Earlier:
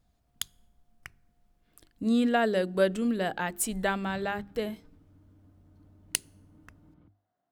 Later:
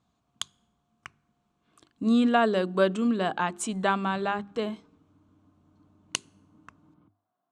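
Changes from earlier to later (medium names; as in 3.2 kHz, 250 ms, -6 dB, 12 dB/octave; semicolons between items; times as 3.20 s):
speech +3.5 dB; master: add cabinet simulation 140–7500 Hz, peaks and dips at 520 Hz -5 dB, 1.1 kHz +9 dB, 1.9 kHz -7 dB, 5 kHz -7 dB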